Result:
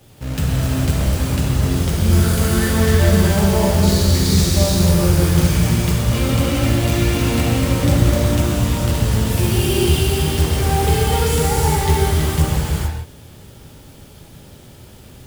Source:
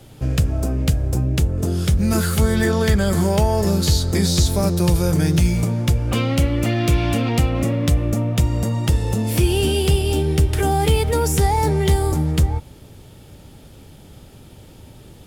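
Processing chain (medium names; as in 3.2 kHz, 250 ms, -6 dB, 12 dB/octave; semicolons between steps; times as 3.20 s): 7.79–8.22 s: bass shelf 480 Hz +3 dB; companded quantiser 4-bit; gated-style reverb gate 480 ms flat, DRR -6.5 dB; trim -6 dB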